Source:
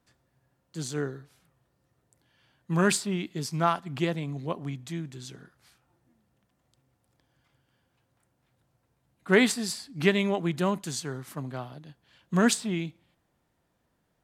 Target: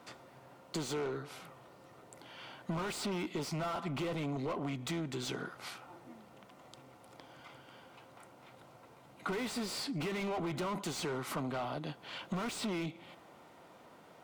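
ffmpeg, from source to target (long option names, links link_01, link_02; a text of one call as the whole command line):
ffmpeg -i in.wav -filter_complex "[0:a]asplit=2[link_01][link_02];[link_02]highpass=frequency=720:poles=1,volume=39dB,asoftclip=type=tanh:threshold=-7.5dB[link_03];[link_01][link_03]amix=inputs=2:normalize=0,lowpass=frequency=1300:poles=1,volume=-6dB,highshelf=frequency=8400:gain=4,acompressor=threshold=-27dB:ratio=6,lowshelf=frequency=84:gain=-6.5,bandreject=frequency=1700:width=5.7,volume=-8dB" out.wav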